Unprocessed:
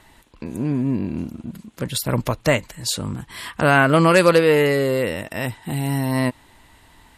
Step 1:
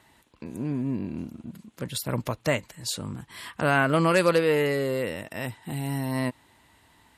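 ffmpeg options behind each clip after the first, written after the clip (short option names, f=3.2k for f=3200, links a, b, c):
-af "highpass=73,volume=-7dB"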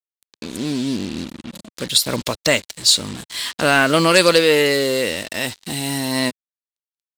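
-af "acrusher=bits=6:mix=0:aa=0.5,equalizer=f=125:t=o:w=1:g=-9,equalizer=f=1k:t=o:w=1:g=-3,equalizer=f=4k:t=o:w=1:g=11,equalizer=f=8k:t=o:w=1:g=6,acontrast=77,volume=1.5dB"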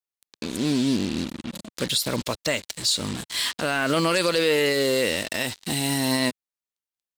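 -af "alimiter=limit=-13dB:level=0:latency=1:release=95"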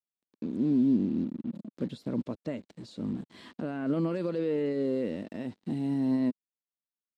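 -af "bandpass=f=230:t=q:w=1.6:csg=0"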